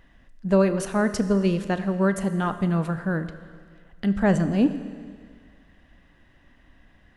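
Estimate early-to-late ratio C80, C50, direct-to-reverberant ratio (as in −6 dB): 12.5 dB, 11.5 dB, 10.5 dB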